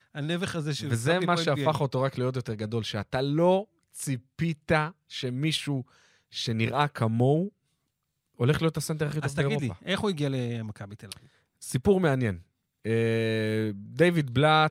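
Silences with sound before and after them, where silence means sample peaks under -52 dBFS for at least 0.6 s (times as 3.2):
7.49–8.38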